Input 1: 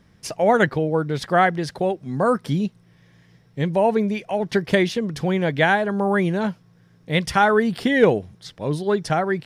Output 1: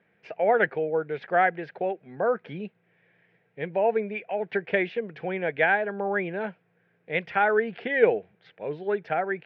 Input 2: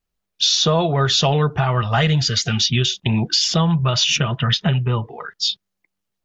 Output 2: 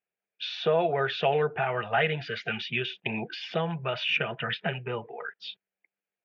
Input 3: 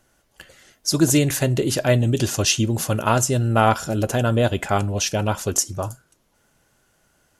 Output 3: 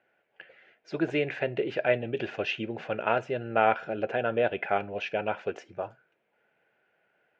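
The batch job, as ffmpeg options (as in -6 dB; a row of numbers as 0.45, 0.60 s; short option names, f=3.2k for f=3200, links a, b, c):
-af "highpass=260,equalizer=f=270:t=q:w=4:g=-8,equalizer=f=460:t=q:w=4:g=5,equalizer=f=720:t=q:w=4:g=4,equalizer=f=1.1k:t=q:w=4:g=-8,equalizer=f=1.6k:t=q:w=4:g=5,equalizer=f=2.4k:t=q:w=4:g=8,lowpass=f=2.7k:w=0.5412,lowpass=f=2.7k:w=1.3066,volume=-7dB"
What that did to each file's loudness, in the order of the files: -5.5, -11.0, -9.0 LU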